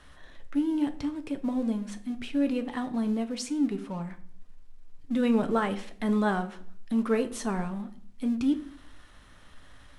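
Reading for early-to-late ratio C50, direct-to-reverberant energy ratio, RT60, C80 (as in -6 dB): 15.0 dB, 8.0 dB, 0.55 s, 18.0 dB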